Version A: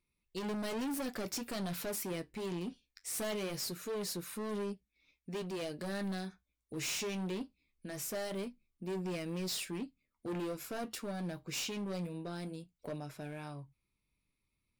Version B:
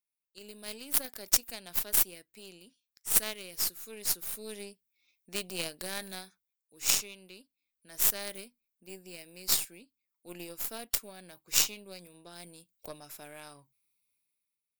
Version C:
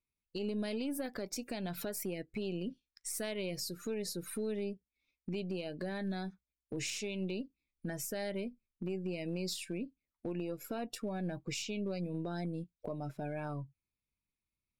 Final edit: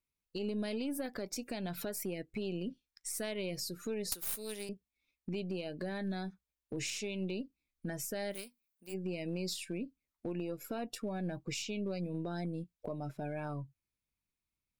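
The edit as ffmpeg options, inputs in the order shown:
ffmpeg -i take0.wav -i take1.wav -i take2.wav -filter_complex "[1:a]asplit=2[link_01][link_02];[2:a]asplit=3[link_03][link_04][link_05];[link_03]atrim=end=4.122[link_06];[link_01]atrim=start=4.118:end=4.692[link_07];[link_04]atrim=start=4.688:end=8.35[link_08];[link_02]atrim=start=8.31:end=8.95[link_09];[link_05]atrim=start=8.91[link_10];[link_06][link_07]acrossfade=duration=0.004:curve1=hsin:curve2=hsin[link_11];[link_11][link_08]acrossfade=duration=0.004:curve1=hsin:curve2=hsin[link_12];[link_12][link_09]acrossfade=duration=0.04:curve1=tri:curve2=tri[link_13];[link_13][link_10]acrossfade=duration=0.04:curve1=tri:curve2=tri" out.wav

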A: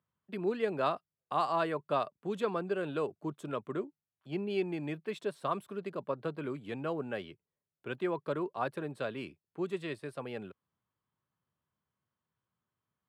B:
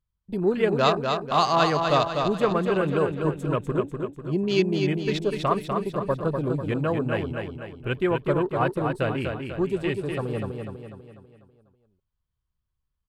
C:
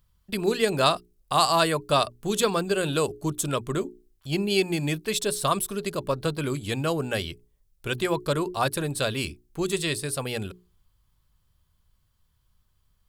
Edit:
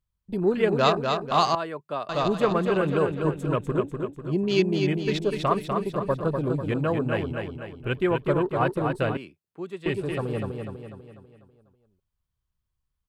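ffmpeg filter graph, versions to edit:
ffmpeg -i take0.wav -i take1.wav -filter_complex "[0:a]asplit=2[link_01][link_02];[1:a]asplit=3[link_03][link_04][link_05];[link_03]atrim=end=1.552[link_06];[link_01]atrim=start=1.548:end=2.092[link_07];[link_04]atrim=start=2.088:end=9.172[link_08];[link_02]atrim=start=9.168:end=9.862[link_09];[link_05]atrim=start=9.858[link_10];[link_06][link_07]acrossfade=duration=0.004:curve1=hsin:curve2=hsin[link_11];[link_11][link_08]acrossfade=duration=0.004:curve1=hsin:curve2=hsin[link_12];[link_12][link_09]acrossfade=duration=0.004:curve1=hsin:curve2=hsin[link_13];[link_13][link_10]acrossfade=duration=0.004:curve1=hsin:curve2=hsin" out.wav

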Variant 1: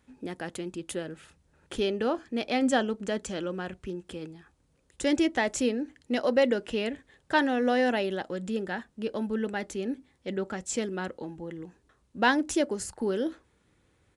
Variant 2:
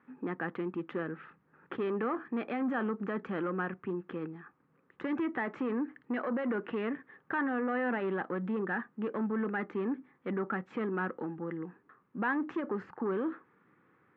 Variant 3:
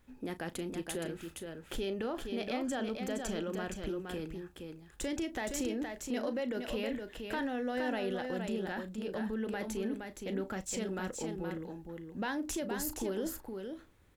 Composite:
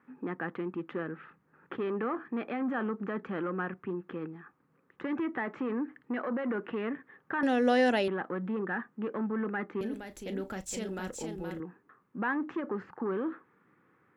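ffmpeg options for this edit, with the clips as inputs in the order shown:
ffmpeg -i take0.wav -i take1.wav -i take2.wav -filter_complex "[1:a]asplit=3[link_01][link_02][link_03];[link_01]atrim=end=7.432[link_04];[0:a]atrim=start=7.428:end=8.082[link_05];[link_02]atrim=start=8.078:end=9.812[link_06];[2:a]atrim=start=9.808:end=11.602[link_07];[link_03]atrim=start=11.598[link_08];[link_04][link_05]acrossfade=duration=0.004:curve1=hsin:curve2=hsin[link_09];[link_09][link_06]acrossfade=duration=0.004:curve1=hsin:curve2=hsin[link_10];[link_10][link_07]acrossfade=duration=0.004:curve1=hsin:curve2=hsin[link_11];[link_11][link_08]acrossfade=duration=0.004:curve1=hsin:curve2=hsin" out.wav

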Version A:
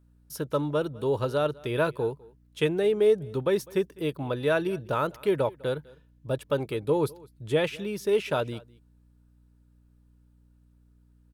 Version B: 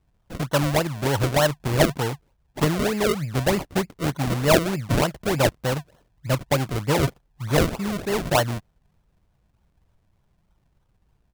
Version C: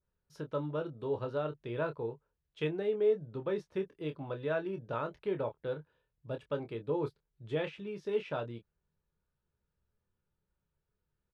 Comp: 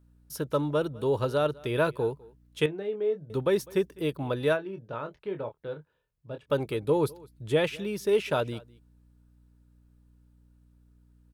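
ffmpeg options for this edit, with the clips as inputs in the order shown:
ffmpeg -i take0.wav -i take1.wav -i take2.wav -filter_complex "[2:a]asplit=2[link_01][link_02];[0:a]asplit=3[link_03][link_04][link_05];[link_03]atrim=end=2.662[link_06];[link_01]atrim=start=2.658:end=3.302[link_07];[link_04]atrim=start=3.298:end=4.58[link_08];[link_02]atrim=start=4.52:end=6.52[link_09];[link_05]atrim=start=6.46[link_10];[link_06][link_07]acrossfade=duration=0.004:curve1=hsin:curve2=hsin[link_11];[link_11][link_08]acrossfade=duration=0.004:curve1=hsin:curve2=hsin[link_12];[link_12][link_09]acrossfade=duration=0.06:curve1=tri:curve2=tri[link_13];[link_13][link_10]acrossfade=duration=0.06:curve1=tri:curve2=tri" out.wav

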